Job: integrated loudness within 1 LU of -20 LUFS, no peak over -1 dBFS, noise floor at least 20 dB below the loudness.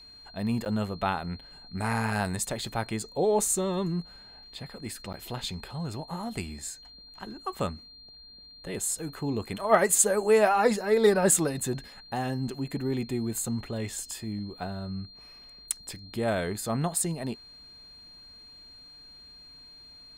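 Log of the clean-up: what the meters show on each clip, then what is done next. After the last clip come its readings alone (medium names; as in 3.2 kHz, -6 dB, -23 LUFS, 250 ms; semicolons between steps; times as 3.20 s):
dropouts 2; longest dropout 8.8 ms; steady tone 4.2 kHz; tone level -48 dBFS; loudness -28.5 LUFS; peak level -6.0 dBFS; loudness target -20.0 LUFS
-> interpolate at 0.65/5.13 s, 8.8 ms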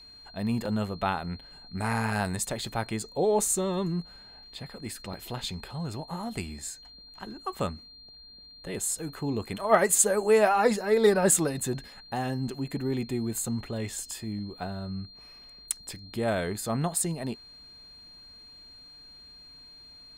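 dropouts 0; steady tone 4.2 kHz; tone level -48 dBFS
-> band-stop 4.2 kHz, Q 30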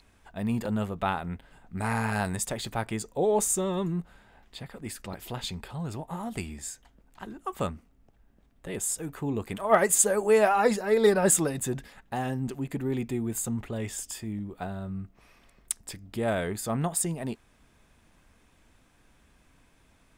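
steady tone not found; loudness -28.5 LUFS; peak level -6.0 dBFS; loudness target -20.0 LUFS
-> trim +8.5 dB; peak limiter -1 dBFS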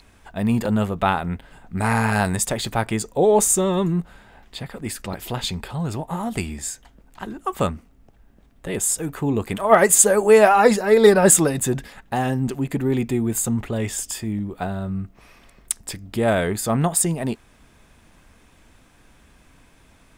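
loudness -20.5 LUFS; peak level -1.0 dBFS; noise floor -54 dBFS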